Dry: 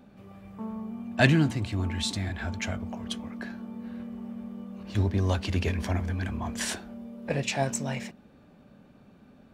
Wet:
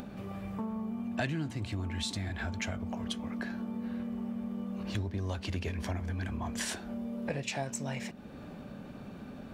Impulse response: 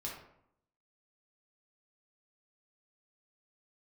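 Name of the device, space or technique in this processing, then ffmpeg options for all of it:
upward and downward compression: -af "acompressor=mode=upward:threshold=-48dB:ratio=2.5,acompressor=threshold=-43dB:ratio=4,volume=8dB"

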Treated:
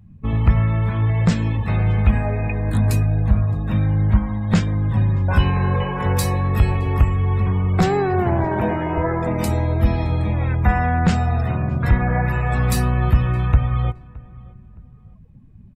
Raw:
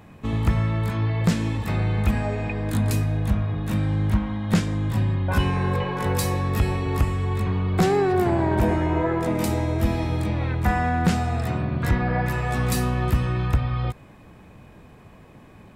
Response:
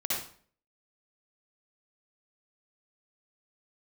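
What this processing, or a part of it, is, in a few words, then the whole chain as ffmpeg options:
low shelf boost with a cut just above: -filter_complex "[0:a]asettb=1/sr,asplit=3[link_01][link_02][link_03];[link_01]atrim=end=8.444[link_04];[link_02]atrim=start=8.44:end=8.98,asetpts=PTS-STARTPTS,afade=type=in:duration=0.004:curve=qsin,afade=type=out:start_time=0.536:duration=0.004:curve=qsin,highpass=150[link_05];[link_03]atrim=start=8.976[link_06];[link_04][link_05]acrossfade=duration=0.004:curve1=hsin:curve2=qsin[link_07];[link_07][link_06]acrossfade=duration=0.004:curve1=qsin:curve2=hsin,lowshelf=frequency=71:gain=7.5,equalizer=frequency=320:width_type=o:width=0.86:gain=-4.5,afftdn=noise_reduction=25:noise_floor=-39,asplit=2[link_08][link_09];[link_09]adelay=617,lowpass=frequency=2100:poles=1,volume=-22dB,asplit=2[link_10][link_11];[link_11]adelay=617,lowpass=frequency=2100:poles=1,volume=0.34[link_12];[link_08][link_10][link_12]amix=inputs=3:normalize=0,volume=3dB"

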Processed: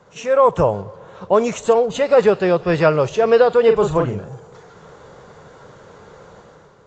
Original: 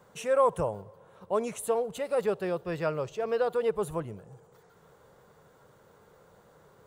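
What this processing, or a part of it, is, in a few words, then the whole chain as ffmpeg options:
low-bitrate web radio: -filter_complex "[0:a]lowpass=frequency=8800:width=0.5412,lowpass=frequency=8800:width=1.3066,asettb=1/sr,asplit=3[link_01][link_02][link_03];[link_01]atrim=end=3.644[link_04];[link_02]atrim=start=3.64:end=4.3,asetpts=PTS-STARTPTS,afade=type=in:duration=0.004:curve=qsin,afade=type=out:start_time=0.656:duration=0.004:curve=qsin,asplit=2[link_05][link_06];[link_06]adelay=40,volume=-5dB[link_07];[link_05][link_07]amix=inputs=2:normalize=0,atrim=end_sample=29106[link_08];[link_03]atrim=start=4.296[link_09];[link_04][link_08]acrossfade=duration=0.004:curve1=hsin:curve2=qsin[link_10];[link_10][link_09]acrossfade=duration=0.004:curve1=qsin:curve2=hsin,dynaudnorm=framelen=110:gausssize=9:maxgain=9dB,alimiter=limit=-10.5dB:level=0:latency=1:release=443,volume=7dB" -ar 16000 -c:a aac -b:a 32k

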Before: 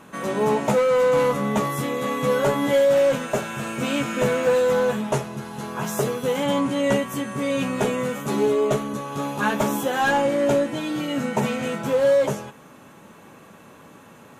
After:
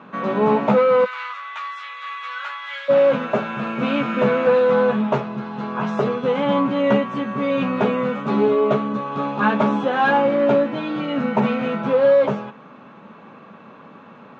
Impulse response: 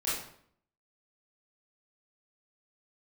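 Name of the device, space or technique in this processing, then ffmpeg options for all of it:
kitchen radio: -filter_complex "[0:a]asplit=3[link_01][link_02][link_03];[link_01]afade=type=out:start_time=1.04:duration=0.02[link_04];[link_02]highpass=frequency=1400:width=0.5412,highpass=frequency=1400:width=1.3066,afade=type=in:start_time=1.04:duration=0.02,afade=type=out:start_time=2.88:duration=0.02[link_05];[link_03]afade=type=in:start_time=2.88:duration=0.02[link_06];[link_04][link_05][link_06]amix=inputs=3:normalize=0,highpass=160,equalizer=frequency=210:width_type=q:width=4:gain=5,equalizer=frequency=330:width_type=q:width=4:gain=-4,equalizer=frequency=1200:width_type=q:width=4:gain=4,equalizer=frequency=1900:width_type=q:width=4:gain=-4,equalizer=frequency=3100:width_type=q:width=4:gain=-4,lowpass=frequency=3500:width=0.5412,lowpass=frequency=3500:width=1.3066,volume=3.5dB"

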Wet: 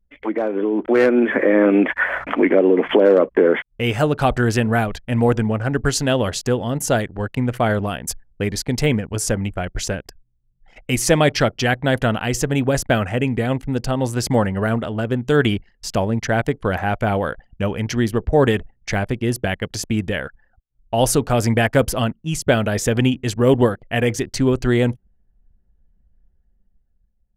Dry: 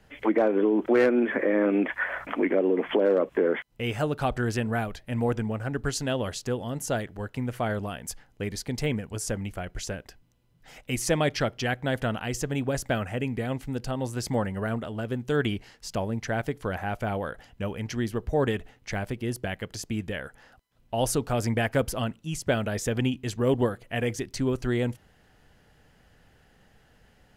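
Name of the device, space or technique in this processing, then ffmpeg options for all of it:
voice memo with heavy noise removal: -af "anlmdn=0.0631,dynaudnorm=framelen=220:gausssize=9:maxgain=10dB"

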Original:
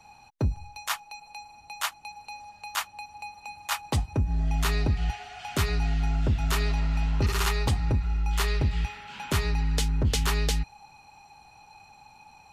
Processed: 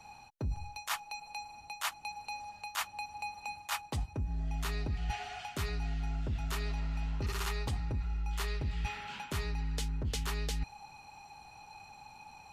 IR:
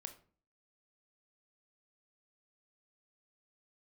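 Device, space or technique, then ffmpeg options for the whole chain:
compression on the reversed sound: -af "areverse,acompressor=threshold=-32dB:ratio=6,areverse"

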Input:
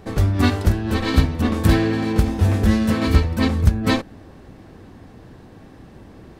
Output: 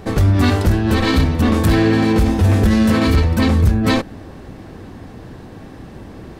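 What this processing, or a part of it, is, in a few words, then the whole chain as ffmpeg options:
soft clipper into limiter: -af "asoftclip=type=tanh:threshold=-5dB,alimiter=limit=-14dB:level=0:latency=1:release=24,volume=7.5dB"

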